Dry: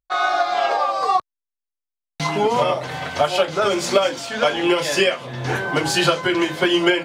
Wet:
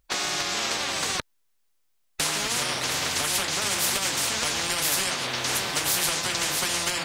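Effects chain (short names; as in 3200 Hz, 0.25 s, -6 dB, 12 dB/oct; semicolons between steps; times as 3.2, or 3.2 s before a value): spectral compressor 10:1; gain -5 dB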